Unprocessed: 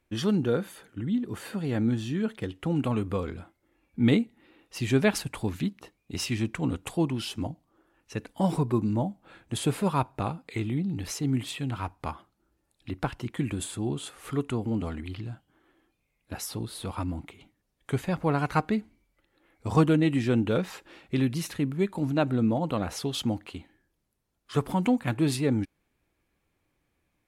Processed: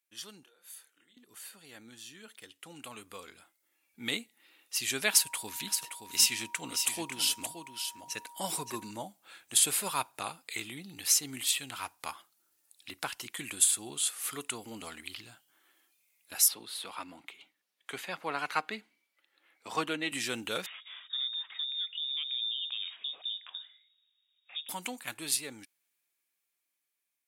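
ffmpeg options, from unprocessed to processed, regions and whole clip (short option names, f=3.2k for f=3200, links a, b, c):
-filter_complex "[0:a]asettb=1/sr,asplit=3[a][b][c];[a]atrim=end=0.434[d];[b]atrim=start=0.43:end=1.17,asetpts=PTS-STARTPTS,afade=t=in:d=0.004:c=qsin,afade=t=out:st=0.736:d=0.004:c=qsin,highpass=380,acompressor=threshold=-42dB:ratio=10:attack=3.2:release=140:knee=1:detection=peak,asplit=2[e][f];[f]adelay=28,volume=-5dB[g];[e][g]amix=inputs=2:normalize=0,atrim=end_sample=32634[h];[c]atrim=start=1.166[i];[d][h]acrossfade=d=0.004:c1=hsin:c2=qsin[j];[j][i]acrossfade=d=0.004:c1=qsin:c2=hsin,asettb=1/sr,asplit=3[k][l][m];[k]atrim=end=5.104[n];[l]atrim=start=5.1:end=8.91,asetpts=PTS-STARTPTS,afade=t=in:d=0.004:c=qsin,afade=t=out:st=3.806:d=0.004:c=qsin,aeval=exprs='val(0)+0.00708*sin(2*PI*950*n/s)':c=same,aecho=1:1:573:0.398,atrim=end_sample=168021[o];[m]atrim=start=8.906[p];[n][o]acrossfade=d=0.004:c1=hsin:c2=qsin[q];[q][p]acrossfade=d=0.004:c1=qsin:c2=hsin,asettb=1/sr,asplit=3[r][s][t];[r]atrim=end=16.484[u];[s]atrim=start=16.48:end=20.12,asetpts=PTS-STARTPTS,afade=t=in:d=0.004:c=qsin,afade=t=out:st=3.636:d=0.004:c=qsin,highpass=54,acrossover=split=160 4100:gain=0.224 1 0.178[v][w][x];[v][w][x]amix=inputs=3:normalize=0[y];[t]atrim=start=20.116[z];[u][y]acrossfade=d=0.004:c1=hsin:c2=qsin[aa];[aa][z]acrossfade=d=0.004:c1=qsin:c2=hsin,asettb=1/sr,asplit=3[ab][ac][ad];[ab]atrim=end=20.664[ae];[ac]atrim=start=20.66:end=24.69,asetpts=PTS-STARTPTS,afade=t=in:d=0.004:c=qsin,afade=t=out:st=4.026:d=0.004:c=qsin,acompressor=threshold=-44dB:ratio=3:attack=3.2:release=140:knee=1:detection=peak,lowpass=f=3.2k:t=q:w=0.5098,lowpass=f=3.2k:t=q:w=0.6013,lowpass=f=3.2k:t=q:w=0.9,lowpass=f=3.2k:t=q:w=2.563,afreqshift=-3800[af];[ad]atrim=start=24.686[ag];[ae][af]acrossfade=d=0.004:c1=hsin:c2=qsin[ah];[ah][ag]acrossfade=d=0.004:c1=qsin:c2=hsin,aderivative,dynaudnorm=f=820:g=9:m=14dB,volume=-1.5dB"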